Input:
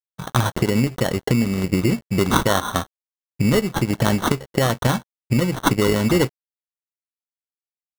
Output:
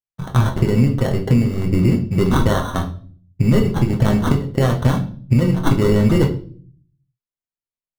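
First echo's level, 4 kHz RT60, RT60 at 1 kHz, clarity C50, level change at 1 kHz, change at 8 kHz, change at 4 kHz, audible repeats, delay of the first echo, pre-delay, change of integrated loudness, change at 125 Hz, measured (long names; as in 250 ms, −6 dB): no echo audible, 0.40 s, 0.40 s, 11.0 dB, −2.0 dB, −7.5 dB, −5.0 dB, no echo audible, no echo audible, 8 ms, +3.0 dB, +6.0 dB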